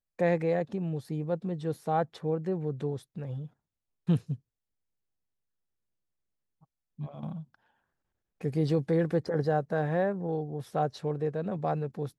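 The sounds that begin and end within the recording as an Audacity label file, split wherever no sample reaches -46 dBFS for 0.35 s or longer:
4.080000	4.360000	sound
6.990000	7.540000	sound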